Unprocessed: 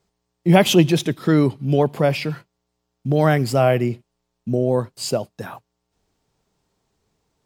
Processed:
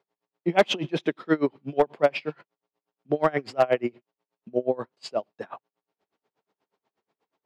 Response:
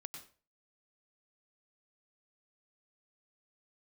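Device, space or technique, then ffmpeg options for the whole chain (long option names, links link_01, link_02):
helicopter radio: -af "highpass=340,lowpass=2800,aeval=exprs='val(0)*pow(10,-28*(0.5-0.5*cos(2*PI*8.3*n/s))/20)':channel_layout=same,asoftclip=type=hard:threshold=-12.5dB,volume=2.5dB"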